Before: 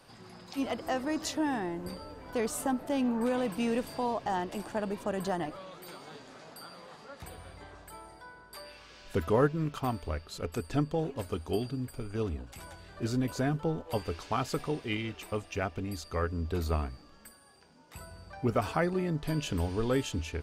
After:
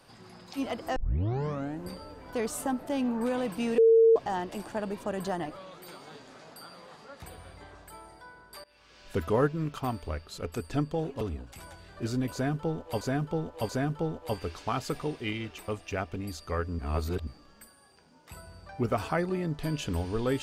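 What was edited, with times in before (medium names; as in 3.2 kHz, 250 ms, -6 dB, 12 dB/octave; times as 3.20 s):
0.96 s: tape start 0.86 s
3.78–4.16 s: bleep 453 Hz -15.5 dBFS
8.64–9.10 s: fade in, from -22 dB
11.21–12.21 s: delete
13.33–14.01 s: loop, 3 plays
16.43–16.91 s: reverse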